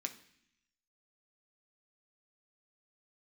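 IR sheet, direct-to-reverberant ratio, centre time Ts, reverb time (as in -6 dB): 4.0 dB, 9 ms, 0.65 s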